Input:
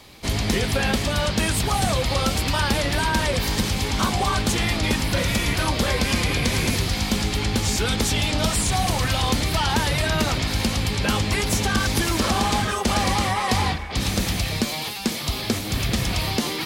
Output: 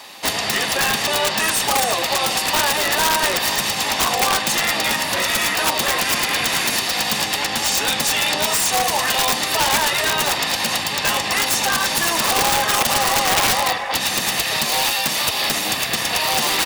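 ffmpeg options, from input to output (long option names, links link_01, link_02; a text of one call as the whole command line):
ffmpeg -i in.wav -filter_complex "[0:a]aecho=1:1:1.1:0.56,asplit=2[link_01][link_02];[link_02]aeval=exprs='sgn(val(0))*max(abs(val(0))-0.0178,0)':channel_layout=same,volume=-12dB[link_03];[link_01][link_03]amix=inputs=2:normalize=0,aecho=1:1:44|75:0.178|0.15,acompressor=threshold=-19dB:ratio=16,highpass=460,asplit=2[link_04][link_05];[link_05]asetrate=29433,aresample=44100,atempo=1.49831,volume=-7dB[link_06];[link_04][link_06]amix=inputs=2:normalize=0,aeval=exprs='(mod(8.41*val(0)+1,2)-1)/8.41':channel_layout=same,volume=8dB" out.wav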